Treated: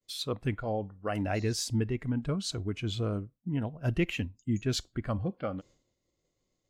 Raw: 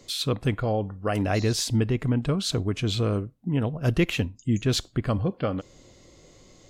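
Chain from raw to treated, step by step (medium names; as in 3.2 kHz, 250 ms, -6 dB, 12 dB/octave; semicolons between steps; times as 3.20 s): expander -42 dBFS; spectral noise reduction 7 dB; trim -5.5 dB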